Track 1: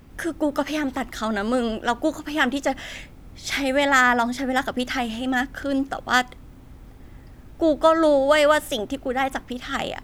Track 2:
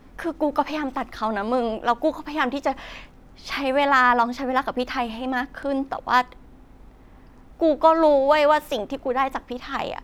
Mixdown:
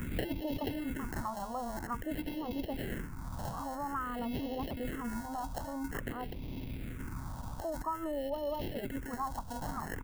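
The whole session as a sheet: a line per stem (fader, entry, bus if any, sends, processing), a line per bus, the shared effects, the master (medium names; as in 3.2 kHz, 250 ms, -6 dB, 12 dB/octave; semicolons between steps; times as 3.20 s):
0.0 dB, 0.00 s, no send, peaking EQ 1.1 kHz -14 dB 0.46 oct; compressor with a negative ratio -33 dBFS, ratio -1; sample-rate reducer 1.2 kHz, jitter 0%; auto duck -8 dB, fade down 1.40 s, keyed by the second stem
-12.5 dB, 26 ms, no send, steep low-pass 1.3 kHz 48 dB/octave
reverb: none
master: phase shifter stages 4, 0.5 Hz, lowest notch 370–1400 Hz; three bands compressed up and down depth 70%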